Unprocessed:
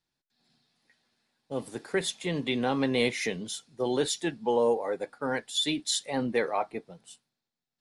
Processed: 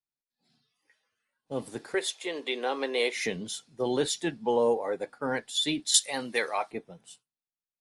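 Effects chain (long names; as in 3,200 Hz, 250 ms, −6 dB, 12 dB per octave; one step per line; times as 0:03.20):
0:01.94–0:03.16: Chebyshev high-pass filter 380 Hz, order 3
noise reduction from a noise print of the clip's start 17 dB
0:05.94–0:06.71: spectral tilt +4 dB per octave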